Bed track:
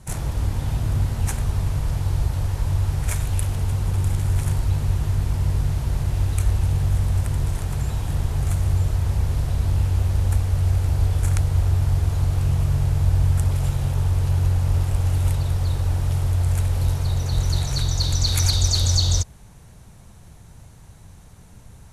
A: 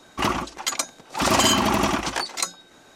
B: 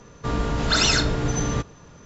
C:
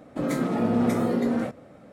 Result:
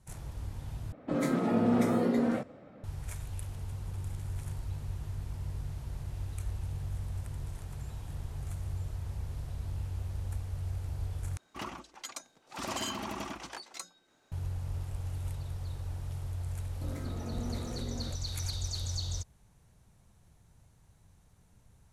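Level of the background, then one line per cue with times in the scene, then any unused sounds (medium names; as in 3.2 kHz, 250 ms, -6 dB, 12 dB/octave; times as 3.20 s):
bed track -16.5 dB
0.92 s: replace with C -3.5 dB + level-controlled noise filter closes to 2.9 kHz, open at -22.5 dBFS
11.37 s: replace with A -17.5 dB
16.65 s: add C -17.5 dB
not used: B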